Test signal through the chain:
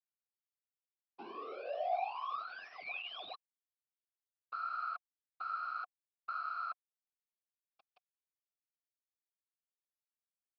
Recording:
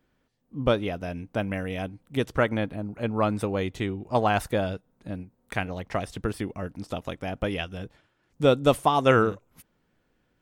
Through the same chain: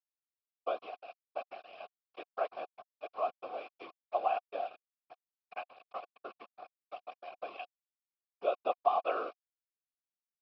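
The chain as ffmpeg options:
-filter_complex "[0:a]afftfilt=real='re*between(b*sr/4096,280,4100)':imag='im*between(b*sr/4096,280,4100)':win_size=4096:overlap=0.75,aresample=11025,aeval=exprs='val(0)*gte(abs(val(0)),0.0355)':c=same,aresample=44100,afftfilt=real='hypot(re,im)*cos(2*PI*random(0))':imag='hypot(re,im)*sin(2*PI*random(1))':win_size=512:overlap=0.75,asplit=3[a][b][c];[a]bandpass=f=730:t=q:w=8,volume=0dB[d];[b]bandpass=f=1.09k:t=q:w=8,volume=-6dB[e];[c]bandpass=f=2.44k:t=q:w=8,volume=-9dB[f];[d][e][f]amix=inputs=3:normalize=0,volume=4.5dB"

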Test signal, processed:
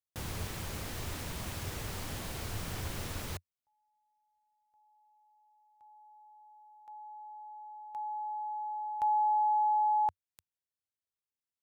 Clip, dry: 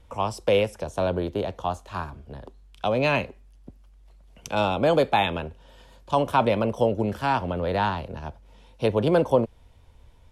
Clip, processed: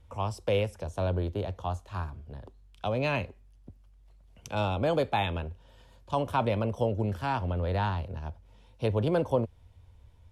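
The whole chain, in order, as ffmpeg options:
-af "equalizer=f=90:w=1.6:g=11,volume=-7dB"

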